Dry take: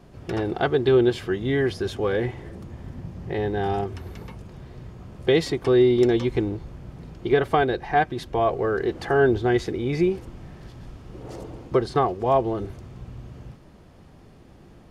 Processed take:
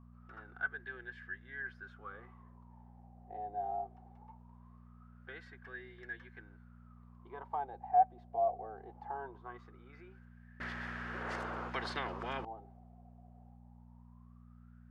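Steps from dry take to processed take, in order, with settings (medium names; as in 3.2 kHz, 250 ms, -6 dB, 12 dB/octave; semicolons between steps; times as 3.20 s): wah-wah 0.21 Hz 720–1700 Hz, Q 15; mains buzz 60 Hz, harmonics 4, -55 dBFS -3 dB/octave; 10.60–12.45 s: spectrum-flattening compressor 10:1; trim -2 dB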